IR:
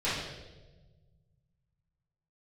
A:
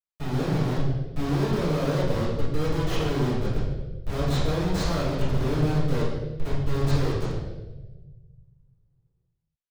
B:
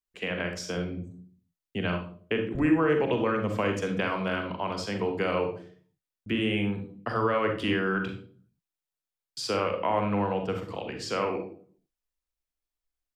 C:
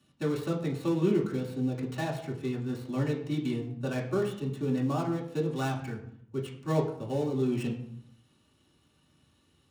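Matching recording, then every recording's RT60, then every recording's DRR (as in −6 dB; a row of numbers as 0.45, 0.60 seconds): A; 1.2, 0.50, 0.70 seconds; −12.5, 4.5, −5.5 decibels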